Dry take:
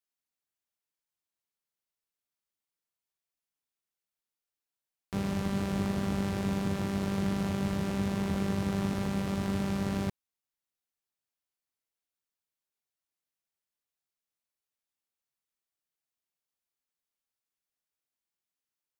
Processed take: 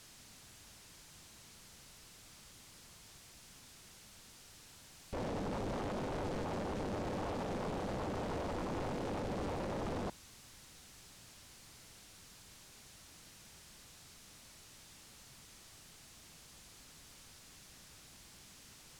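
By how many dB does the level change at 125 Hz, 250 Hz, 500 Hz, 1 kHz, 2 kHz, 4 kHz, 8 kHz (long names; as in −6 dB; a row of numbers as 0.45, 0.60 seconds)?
−10.5, −11.5, −2.0, −1.5, −6.0, −4.5, −1.5 decibels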